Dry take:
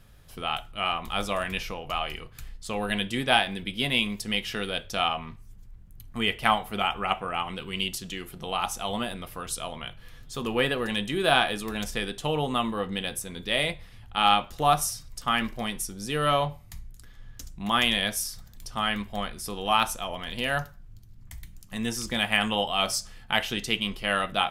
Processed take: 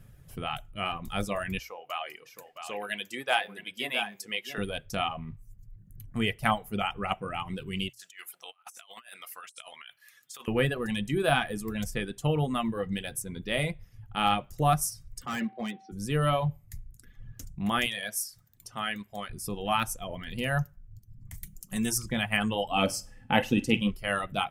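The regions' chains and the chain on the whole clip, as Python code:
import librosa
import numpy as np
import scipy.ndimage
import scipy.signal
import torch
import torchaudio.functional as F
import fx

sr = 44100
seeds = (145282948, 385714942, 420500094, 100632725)

y = fx.chain(x, sr, fx.highpass(hz=520.0, slope=12),
    fx.peak_eq(hz=9500.0, db=-5.0, octaves=0.42),
    fx.echo_single(ms=666, db=-8.0), at=(1.59, 4.58))
y = fx.chain(y, sr, fx.highpass(hz=1400.0, slope=12),
    fx.over_compress(threshold_db=-42.0, ratio=-0.5), at=(7.89, 10.48))
y = fx.cheby1_bandpass(y, sr, low_hz=200.0, high_hz=4100.0, order=4, at=(15.25, 15.91), fade=0.02)
y = fx.dmg_tone(y, sr, hz=770.0, level_db=-43.0, at=(15.25, 15.91), fade=0.02)
y = fx.clip_hard(y, sr, threshold_db=-26.5, at=(15.25, 15.91), fade=0.02)
y = fx.chain(y, sr, fx.highpass(hz=170.0, slope=6),
    fx.low_shelf(hz=480.0, db=-7.5), at=(17.86, 19.3))
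y = fx.chain(y, sr, fx.bass_treble(bass_db=-2, treble_db=10),
    fx.comb(ms=5.3, depth=0.38), at=(21.34, 21.98))
y = fx.chain(y, sr, fx.high_shelf(hz=7300.0, db=-5.0),
    fx.small_body(hz=(270.0, 510.0, 810.0, 2600.0), ring_ms=40, db=13),
    fx.room_flutter(wall_m=8.9, rt60_s=0.36), at=(22.71, 23.91))
y = fx.hum_notches(y, sr, base_hz=60, count=2)
y = fx.dereverb_blind(y, sr, rt60_s=1.0)
y = fx.graphic_eq(y, sr, hz=(125, 1000, 4000), db=(9, -5, -9))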